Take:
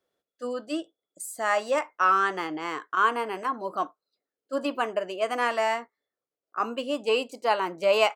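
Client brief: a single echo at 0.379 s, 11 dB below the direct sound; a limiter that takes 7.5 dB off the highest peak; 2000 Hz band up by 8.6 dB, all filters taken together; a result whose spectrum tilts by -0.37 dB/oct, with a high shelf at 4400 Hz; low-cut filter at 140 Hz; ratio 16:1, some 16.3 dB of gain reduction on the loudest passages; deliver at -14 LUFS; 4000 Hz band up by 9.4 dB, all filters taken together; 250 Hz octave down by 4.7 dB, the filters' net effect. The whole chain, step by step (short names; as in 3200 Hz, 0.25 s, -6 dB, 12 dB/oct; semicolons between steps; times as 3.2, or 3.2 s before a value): HPF 140 Hz; bell 250 Hz -6 dB; bell 2000 Hz +9 dB; bell 4000 Hz +7.5 dB; high shelf 4400 Hz +3.5 dB; compressor 16:1, threshold -29 dBFS; limiter -24.5 dBFS; echo 0.379 s -11 dB; gain +22 dB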